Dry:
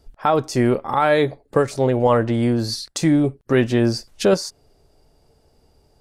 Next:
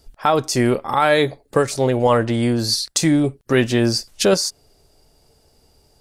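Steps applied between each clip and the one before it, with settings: treble shelf 2.6 kHz +9.5 dB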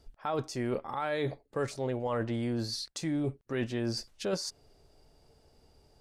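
reverse; compression 5:1, threshold -25 dBFS, peak gain reduction 13 dB; reverse; low-pass 3.3 kHz 6 dB/octave; trim -5 dB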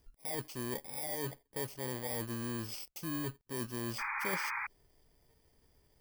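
bit-reversed sample order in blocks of 32 samples; painted sound noise, 3.98–4.67 s, 800–2500 Hz -31 dBFS; trim -6.5 dB

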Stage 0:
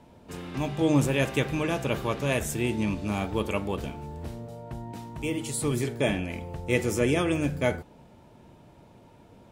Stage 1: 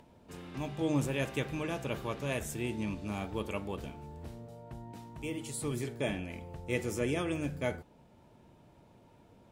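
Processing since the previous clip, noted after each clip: upward compressor, threshold -47 dBFS; trim -8 dB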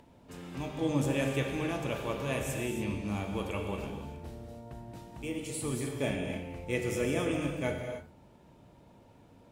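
gated-style reverb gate 320 ms flat, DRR 2.5 dB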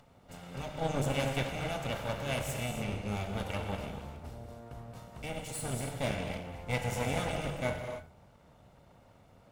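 comb filter that takes the minimum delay 1.4 ms

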